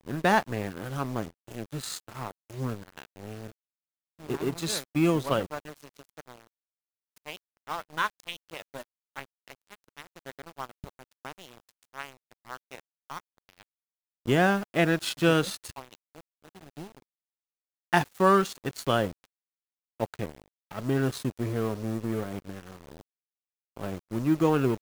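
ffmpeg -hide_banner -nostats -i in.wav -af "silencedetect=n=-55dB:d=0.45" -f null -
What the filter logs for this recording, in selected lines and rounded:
silence_start: 3.52
silence_end: 4.19 | silence_duration: 0.67
silence_start: 6.47
silence_end: 7.16 | silence_duration: 0.69
silence_start: 13.63
silence_end: 14.26 | silence_duration: 0.63
silence_start: 17.02
silence_end: 17.93 | silence_duration: 0.90
silence_start: 19.25
silence_end: 20.00 | silence_duration: 0.74
silence_start: 23.01
silence_end: 23.76 | silence_duration: 0.75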